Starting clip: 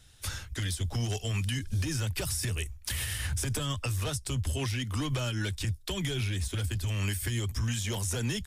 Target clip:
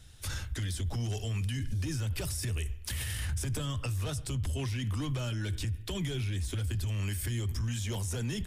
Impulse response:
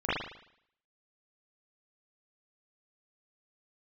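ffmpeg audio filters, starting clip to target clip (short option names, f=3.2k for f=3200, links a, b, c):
-filter_complex "[0:a]lowshelf=f=380:g=5.5,asplit=2[a][b];[1:a]atrim=start_sample=2205[c];[b][c]afir=irnorm=-1:irlink=0,volume=-29dB[d];[a][d]amix=inputs=2:normalize=0,alimiter=level_in=3dB:limit=-24dB:level=0:latency=1:release=14,volume=-3dB"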